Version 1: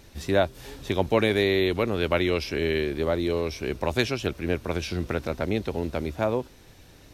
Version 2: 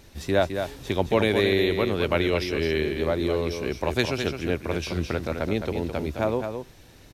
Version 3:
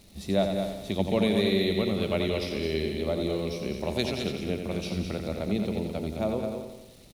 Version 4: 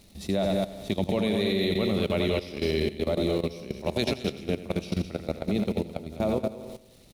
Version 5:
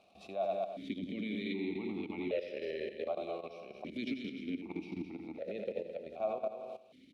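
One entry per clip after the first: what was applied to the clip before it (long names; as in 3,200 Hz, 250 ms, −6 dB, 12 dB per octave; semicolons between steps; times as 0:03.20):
single-tap delay 213 ms −7 dB
surface crackle 540 per second −41 dBFS; thirty-one-band graphic EQ 200 Hz +12 dB, 630 Hz +4 dB, 1,000 Hz −5 dB, 1,600 Hz −11 dB, 4,000 Hz +6 dB, 10,000 Hz +7 dB; repeating echo 88 ms, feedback 56%, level −7 dB; level −6.5 dB
output level in coarse steps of 15 dB; level +5 dB
brickwall limiter −23.5 dBFS, peak gain reduction 10.5 dB; formant filter that steps through the vowels 1.3 Hz; level +7 dB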